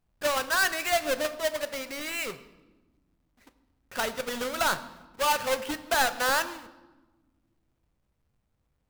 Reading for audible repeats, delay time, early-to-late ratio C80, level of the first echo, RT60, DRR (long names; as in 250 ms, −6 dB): no echo audible, no echo audible, 16.0 dB, no echo audible, 1.2 s, 11.0 dB